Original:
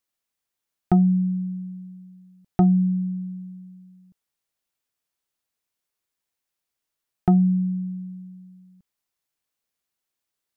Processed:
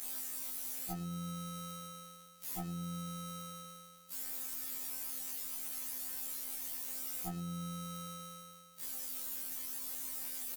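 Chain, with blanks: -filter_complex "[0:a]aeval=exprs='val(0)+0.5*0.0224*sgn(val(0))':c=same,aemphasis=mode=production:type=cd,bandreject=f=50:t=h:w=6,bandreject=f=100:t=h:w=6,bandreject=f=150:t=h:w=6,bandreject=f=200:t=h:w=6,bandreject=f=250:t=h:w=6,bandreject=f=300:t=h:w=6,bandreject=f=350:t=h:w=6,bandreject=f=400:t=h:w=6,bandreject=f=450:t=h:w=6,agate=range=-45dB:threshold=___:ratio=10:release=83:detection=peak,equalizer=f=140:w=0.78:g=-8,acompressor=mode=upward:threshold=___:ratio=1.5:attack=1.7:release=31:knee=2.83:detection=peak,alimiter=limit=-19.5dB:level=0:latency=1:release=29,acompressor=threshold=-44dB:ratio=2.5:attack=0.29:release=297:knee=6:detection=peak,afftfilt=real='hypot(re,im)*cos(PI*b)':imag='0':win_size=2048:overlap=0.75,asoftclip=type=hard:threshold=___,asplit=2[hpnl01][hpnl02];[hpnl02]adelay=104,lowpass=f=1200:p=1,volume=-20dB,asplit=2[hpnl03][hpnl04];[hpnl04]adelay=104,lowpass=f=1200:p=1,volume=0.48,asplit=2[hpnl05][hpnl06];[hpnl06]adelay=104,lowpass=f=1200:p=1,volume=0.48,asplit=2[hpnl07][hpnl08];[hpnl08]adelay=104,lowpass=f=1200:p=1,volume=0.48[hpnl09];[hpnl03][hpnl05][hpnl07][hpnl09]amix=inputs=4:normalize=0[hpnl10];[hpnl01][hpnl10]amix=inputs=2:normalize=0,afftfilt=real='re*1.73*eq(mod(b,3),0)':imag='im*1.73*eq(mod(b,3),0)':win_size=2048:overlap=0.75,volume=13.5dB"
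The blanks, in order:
-33dB, -35dB, -32dB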